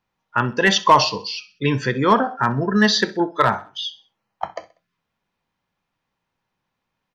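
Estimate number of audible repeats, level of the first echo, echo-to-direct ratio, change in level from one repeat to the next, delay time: 2, -20.0 dB, -19.0 dB, -7.5 dB, 64 ms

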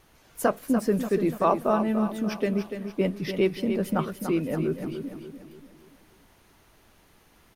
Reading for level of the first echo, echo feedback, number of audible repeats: -8.5 dB, 45%, 4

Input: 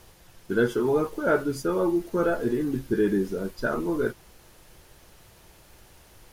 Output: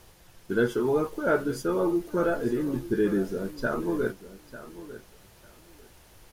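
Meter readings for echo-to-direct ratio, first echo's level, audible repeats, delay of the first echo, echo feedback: -15.0 dB, -15.0 dB, 2, 0.897 s, 19%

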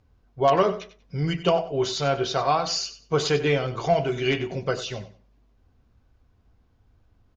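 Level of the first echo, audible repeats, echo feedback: -13.5 dB, 2, 22%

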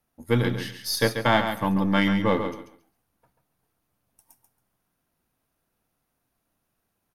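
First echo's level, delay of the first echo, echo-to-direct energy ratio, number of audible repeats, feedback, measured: -8.0 dB, 0.138 s, -8.0 dB, 2, 20%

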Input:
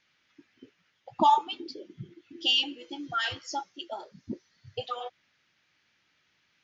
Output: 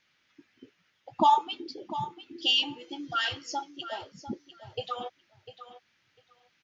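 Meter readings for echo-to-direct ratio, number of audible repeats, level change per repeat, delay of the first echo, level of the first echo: -13.0 dB, 2, -16.5 dB, 0.699 s, -13.0 dB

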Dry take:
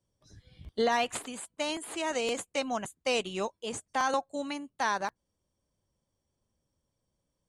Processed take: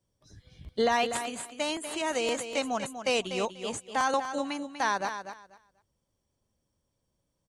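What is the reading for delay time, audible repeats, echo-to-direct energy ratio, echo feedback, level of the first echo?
0.244 s, 2, -9.5 dB, 19%, -9.5 dB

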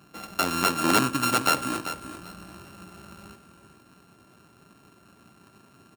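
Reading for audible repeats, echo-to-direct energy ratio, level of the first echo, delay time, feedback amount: 2, -11.0 dB, -11.0 dB, 0.391 s, 22%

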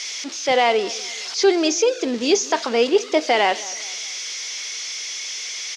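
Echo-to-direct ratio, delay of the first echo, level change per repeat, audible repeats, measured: -19.0 dB, 0.21 s, -8.0 dB, 2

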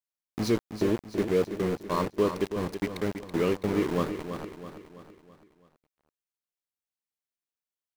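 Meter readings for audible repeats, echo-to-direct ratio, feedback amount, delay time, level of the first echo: 5, -8.0 dB, 48%, 0.329 s, -9.0 dB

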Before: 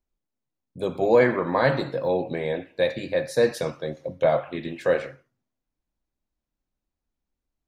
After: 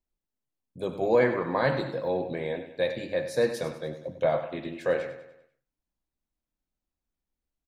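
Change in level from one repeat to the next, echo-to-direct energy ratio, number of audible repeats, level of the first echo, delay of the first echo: -6.5 dB, -11.0 dB, 4, -12.0 dB, 98 ms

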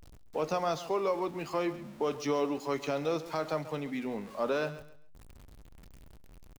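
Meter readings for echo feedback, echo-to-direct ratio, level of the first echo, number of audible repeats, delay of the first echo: 26%, -14.5 dB, -15.0 dB, 2, 0.136 s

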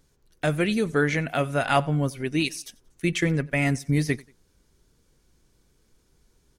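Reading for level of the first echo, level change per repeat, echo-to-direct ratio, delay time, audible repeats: -24.0 dB, -9.0 dB, -23.5 dB, 91 ms, 2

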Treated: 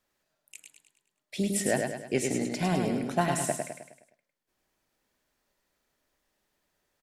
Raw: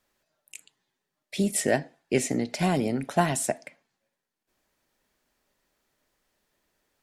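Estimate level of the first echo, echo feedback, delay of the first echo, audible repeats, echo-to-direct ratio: -4.5 dB, 47%, 0.104 s, 5, -3.5 dB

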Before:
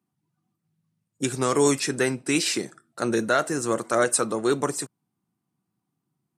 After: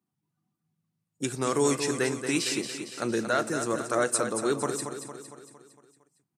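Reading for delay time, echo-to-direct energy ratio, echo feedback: 0.229 s, -6.5 dB, 53%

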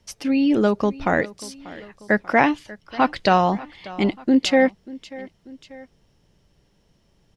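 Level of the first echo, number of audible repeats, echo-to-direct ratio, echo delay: -19.5 dB, 2, -18.5 dB, 0.589 s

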